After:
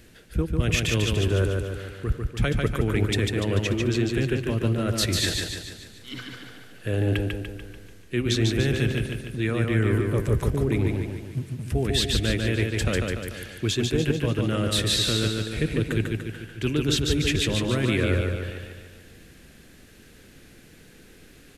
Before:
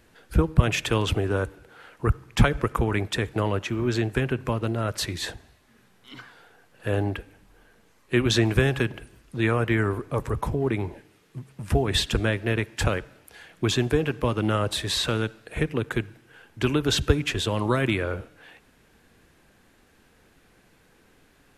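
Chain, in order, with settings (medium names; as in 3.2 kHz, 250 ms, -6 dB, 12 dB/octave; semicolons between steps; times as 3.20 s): peaking EQ 940 Hz -12.5 dB 1.2 oct; reverse; compression 6:1, threshold -30 dBFS, peak gain reduction 18 dB; reverse; feedback delay 146 ms, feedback 53%, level -3.5 dB; trim +8.5 dB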